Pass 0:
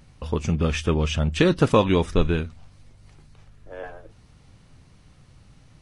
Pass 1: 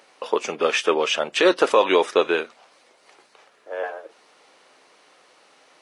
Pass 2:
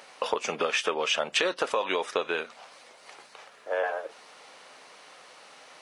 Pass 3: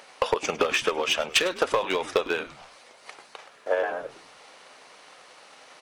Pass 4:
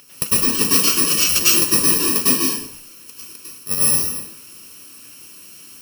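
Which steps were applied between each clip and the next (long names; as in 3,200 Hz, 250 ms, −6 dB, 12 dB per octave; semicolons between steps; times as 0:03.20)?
high-pass filter 420 Hz 24 dB per octave; high-shelf EQ 4,700 Hz −6.5 dB; boost into a limiter +13.5 dB; level −4.5 dB
downward compressor 8 to 1, threshold −27 dBFS, peak gain reduction 15.5 dB; parametric band 340 Hz −7 dB 0.75 octaves; level +5 dB
hard clipping −20 dBFS, distortion −15 dB; transient designer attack +8 dB, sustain +1 dB; echo with shifted repeats 103 ms, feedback 34%, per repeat −140 Hz, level −18 dB
samples in bit-reversed order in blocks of 64 samples; dense smooth reverb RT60 0.53 s, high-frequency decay 0.95×, pre-delay 90 ms, DRR −6.5 dB; level +2 dB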